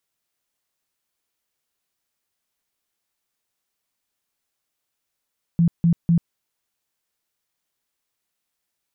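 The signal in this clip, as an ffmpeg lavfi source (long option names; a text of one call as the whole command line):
ffmpeg -f lavfi -i "aevalsrc='0.224*sin(2*PI*169*mod(t,0.25))*lt(mod(t,0.25),15/169)':duration=0.75:sample_rate=44100" out.wav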